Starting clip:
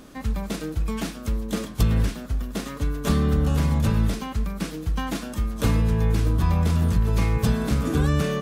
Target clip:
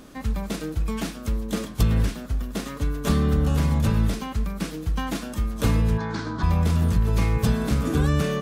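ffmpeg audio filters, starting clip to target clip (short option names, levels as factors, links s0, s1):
-filter_complex "[0:a]asplit=3[s0][s1][s2];[s0]afade=t=out:st=5.97:d=0.02[s3];[s1]highpass=190,equalizer=f=490:t=q:w=4:g=-7,equalizer=f=930:t=q:w=4:g=7,equalizer=f=1500:t=q:w=4:g=9,equalizer=f=2700:t=q:w=4:g=-9,equalizer=f=4300:t=q:w=4:g=5,lowpass=f=6200:w=0.5412,lowpass=f=6200:w=1.3066,afade=t=in:st=5.97:d=0.02,afade=t=out:st=6.42:d=0.02[s4];[s2]afade=t=in:st=6.42:d=0.02[s5];[s3][s4][s5]amix=inputs=3:normalize=0"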